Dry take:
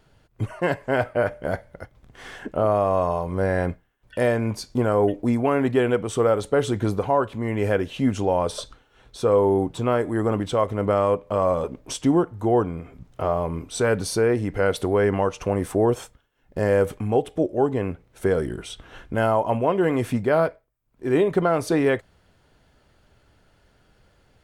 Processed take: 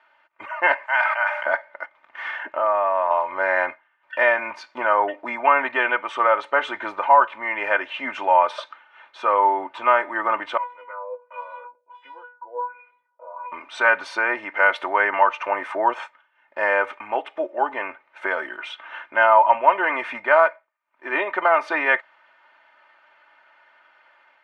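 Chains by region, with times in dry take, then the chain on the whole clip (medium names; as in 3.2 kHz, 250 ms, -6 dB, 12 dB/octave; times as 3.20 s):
0.86–1.46 s: ladder high-pass 680 Hz, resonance 45% + tilt EQ +4.5 dB/octave + decay stretcher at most 39 dB/s
2.31–3.11 s: compression 2:1, threshold -24 dBFS + treble shelf 4.4 kHz -5.5 dB
10.57–13.52 s: feedback comb 490 Hz, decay 0.28 s, mix 100% + LFO low-pass sine 1.4 Hz 590–4400 Hz
whole clip: comb 3.3 ms, depth 70%; level rider gain up to 4 dB; Chebyshev band-pass 910–2300 Hz, order 2; trim +7 dB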